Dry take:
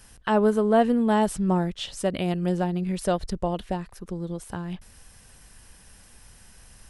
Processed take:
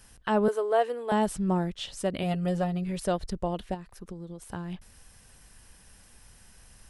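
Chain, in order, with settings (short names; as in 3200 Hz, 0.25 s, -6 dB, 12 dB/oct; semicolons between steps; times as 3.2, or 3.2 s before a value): 0.48–1.12 steep high-pass 360 Hz 36 dB/oct; 2.22–3 comb 7.2 ms, depth 70%; 3.74–4.42 compressor 4:1, threshold -34 dBFS, peak gain reduction 7 dB; gain -3.5 dB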